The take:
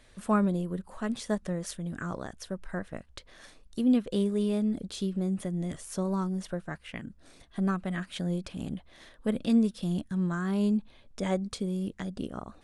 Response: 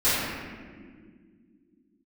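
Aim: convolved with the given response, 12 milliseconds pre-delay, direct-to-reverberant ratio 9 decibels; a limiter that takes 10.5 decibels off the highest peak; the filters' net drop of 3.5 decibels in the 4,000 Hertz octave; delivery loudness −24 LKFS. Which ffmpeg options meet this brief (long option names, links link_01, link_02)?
-filter_complex "[0:a]equalizer=frequency=4000:width_type=o:gain=-4.5,alimiter=level_in=0.5dB:limit=-24dB:level=0:latency=1,volume=-0.5dB,asplit=2[link_01][link_02];[1:a]atrim=start_sample=2205,adelay=12[link_03];[link_02][link_03]afir=irnorm=-1:irlink=0,volume=-26dB[link_04];[link_01][link_04]amix=inputs=2:normalize=0,volume=10dB"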